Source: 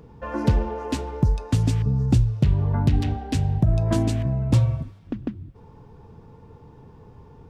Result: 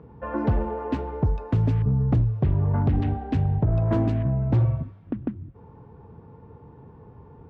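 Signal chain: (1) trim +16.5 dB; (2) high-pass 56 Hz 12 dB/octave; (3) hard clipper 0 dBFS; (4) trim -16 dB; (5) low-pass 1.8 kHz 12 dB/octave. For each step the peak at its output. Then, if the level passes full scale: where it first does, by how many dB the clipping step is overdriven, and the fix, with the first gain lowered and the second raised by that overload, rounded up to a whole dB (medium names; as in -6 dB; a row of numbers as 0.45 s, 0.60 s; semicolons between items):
+7.5 dBFS, +9.0 dBFS, 0.0 dBFS, -16.0 dBFS, -15.5 dBFS; step 1, 9.0 dB; step 1 +7.5 dB, step 4 -7 dB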